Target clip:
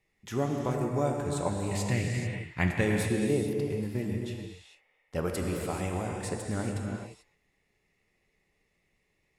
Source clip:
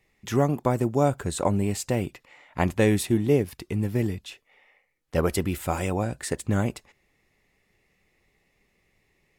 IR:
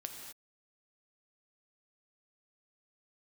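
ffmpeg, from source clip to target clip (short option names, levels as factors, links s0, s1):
-filter_complex "[0:a]asettb=1/sr,asplit=3[s0][s1][s2];[s0]atrim=end=1.714[s3];[s1]atrim=start=1.71:end=2.81,asetpts=PTS-STARTPTS,afade=t=in:d=0.004:c=qsin,afade=t=out:st=1.096:d=0.004:c=qsin,equalizer=f=125:t=o:w=1:g=9,equalizer=f=500:t=o:w=1:g=-3,equalizer=f=1000:t=o:w=1:g=-3,equalizer=f=2000:t=o:w=1:g=11,equalizer=f=4000:t=o:w=1:g=3[s4];[s2]atrim=start=2.806[s5];[s3][s4]acrossfade=d=0.004:c1=hsin:c2=qsin[s6];[s6][s5]acrossfade=d=0.004:c1=qsin:c2=hsin[s7];[1:a]atrim=start_sample=2205,afade=t=out:st=0.29:d=0.01,atrim=end_sample=13230,asetrate=23814,aresample=44100[s8];[s7][s8]afir=irnorm=-1:irlink=0,volume=0.422"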